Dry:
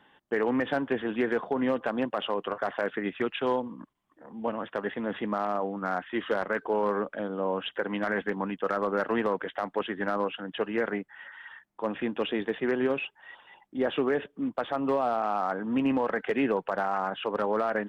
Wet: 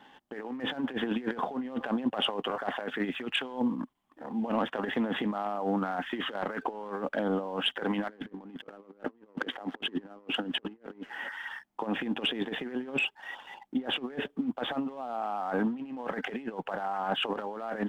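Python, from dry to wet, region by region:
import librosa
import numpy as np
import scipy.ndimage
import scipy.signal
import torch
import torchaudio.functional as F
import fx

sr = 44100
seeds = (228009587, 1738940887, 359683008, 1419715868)

y = fx.chain(x, sr, fx.peak_eq(hz=330.0, db=12.0, octaves=2.0),
    fx.echo_wet_highpass(ms=117, feedback_pct=83, hz=2800.0, wet_db=-18.5), at=(8.09, 11.29))
y = fx.over_compress(y, sr, threshold_db=-33.0, ratio=-0.5)
y = fx.leveller(y, sr, passes=1)
y = fx.graphic_eq_31(y, sr, hz=(100, 250, 800, 3150), db=(-11, 6, 6, 3))
y = y * librosa.db_to_amplitude(-5.0)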